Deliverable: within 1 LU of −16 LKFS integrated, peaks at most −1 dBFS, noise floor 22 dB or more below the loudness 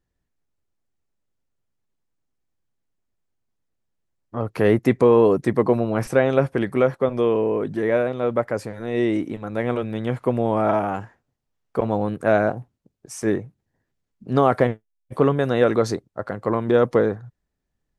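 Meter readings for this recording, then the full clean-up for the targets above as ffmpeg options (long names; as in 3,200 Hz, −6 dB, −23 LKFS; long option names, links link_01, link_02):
integrated loudness −21.5 LKFS; sample peak −3.0 dBFS; target loudness −16.0 LKFS
→ -af "volume=5.5dB,alimiter=limit=-1dB:level=0:latency=1"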